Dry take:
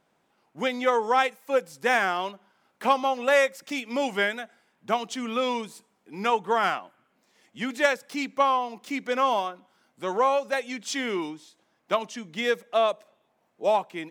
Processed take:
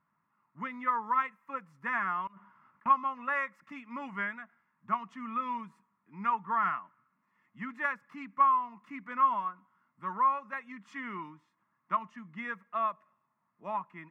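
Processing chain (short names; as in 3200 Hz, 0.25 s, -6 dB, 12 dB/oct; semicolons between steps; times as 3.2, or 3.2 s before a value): EQ curve 190 Hz 0 dB, 490 Hz -22 dB, 1100 Hz +5 dB, 2200 Hz -5 dB, 3700 Hz -24 dB, 12000 Hz -27 dB; 2.27–2.86 negative-ratio compressor -54 dBFS, ratio -1; notch comb 780 Hz; gain -4 dB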